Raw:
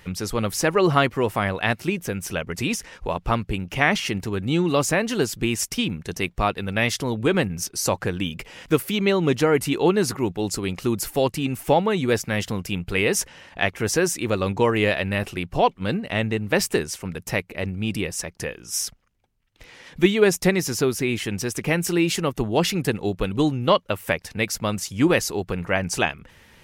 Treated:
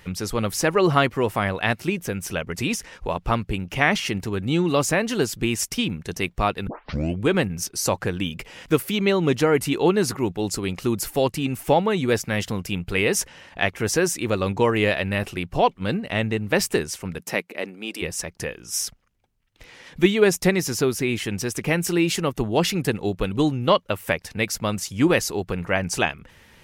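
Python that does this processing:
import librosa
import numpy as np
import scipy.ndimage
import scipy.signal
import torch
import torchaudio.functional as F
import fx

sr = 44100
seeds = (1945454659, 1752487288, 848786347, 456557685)

y = fx.highpass(x, sr, hz=fx.line((17.18, 150.0), (18.01, 350.0)), slope=24, at=(17.18, 18.01), fade=0.02)
y = fx.edit(y, sr, fx.tape_start(start_s=6.67, length_s=0.58), tone=tone)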